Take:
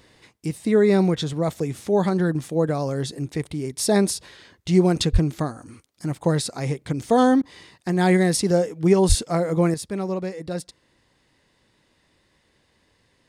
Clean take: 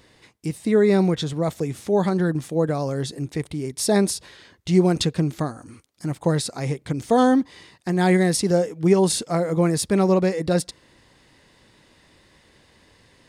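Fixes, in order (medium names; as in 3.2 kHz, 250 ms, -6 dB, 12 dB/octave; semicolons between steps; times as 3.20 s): de-plosive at 5.12/9.08 s; interpolate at 7.42 s, 11 ms; gain correction +8.5 dB, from 9.74 s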